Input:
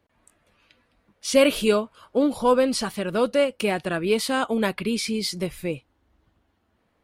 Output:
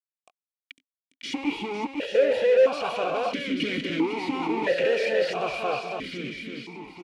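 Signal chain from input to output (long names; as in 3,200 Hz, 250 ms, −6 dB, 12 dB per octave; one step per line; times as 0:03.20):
one-sided soft clipper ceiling −23 dBFS
comb filter 2.1 ms, depth 54%
automatic gain control gain up to 5.5 dB
leveller curve on the samples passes 3
fuzz pedal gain 42 dB, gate −44 dBFS
high-frequency loss of the air 51 metres
on a send: feedback echo with a long and a short gap by turns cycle 839 ms, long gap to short 1.5 to 1, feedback 44%, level −5.5 dB
on the sum: formant filter that steps through the vowels 1.5 Hz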